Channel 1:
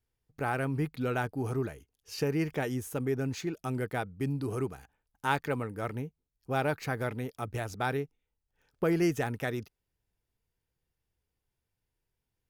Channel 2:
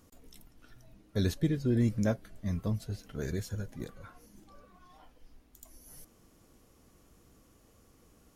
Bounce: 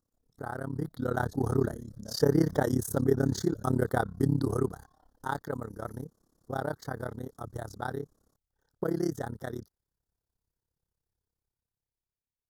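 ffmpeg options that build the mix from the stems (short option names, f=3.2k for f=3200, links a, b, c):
-filter_complex "[0:a]volume=-3dB,afade=t=out:st=4.39:d=0.73:silence=0.354813[a];[1:a]alimiter=level_in=2.5dB:limit=-24dB:level=0:latency=1:release=15,volume=-2.5dB,volume=-18dB[b];[a][b]amix=inputs=2:normalize=0,dynaudnorm=f=210:g=11:m=12.5dB,tremolo=f=34:d=0.947,asuperstop=centerf=2500:order=4:qfactor=1.1"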